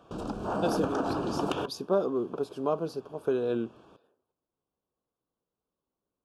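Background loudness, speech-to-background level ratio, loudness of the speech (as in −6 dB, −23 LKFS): −32.5 LKFS, 0.0 dB, −32.5 LKFS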